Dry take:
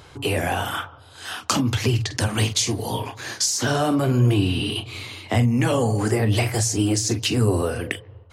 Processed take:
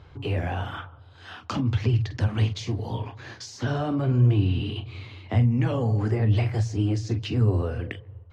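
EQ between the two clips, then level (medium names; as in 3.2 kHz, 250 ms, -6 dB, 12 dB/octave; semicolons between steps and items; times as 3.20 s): distance through air 220 m; peaking EQ 64 Hz +10.5 dB 2.6 oct; treble shelf 10 kHz +7.5 dB; -7.5 dB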